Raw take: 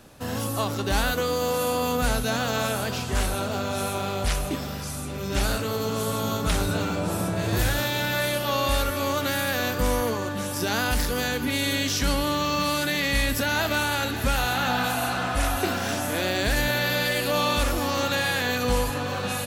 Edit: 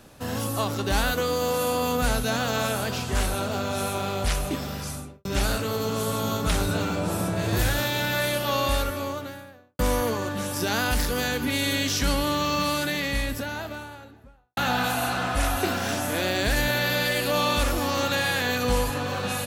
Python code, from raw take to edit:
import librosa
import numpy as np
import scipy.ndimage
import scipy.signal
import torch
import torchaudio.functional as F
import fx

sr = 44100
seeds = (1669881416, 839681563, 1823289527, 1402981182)

y = fx.studio_fade_out(x, sr, start_s=4.88, length_s=0.37)
y = fx.studio_fade_out(y, sr, start_s=8.57, length_s=1.22)
y = fx.studio_fade_out(y, sr, start_s=12.52, length_s=2.05)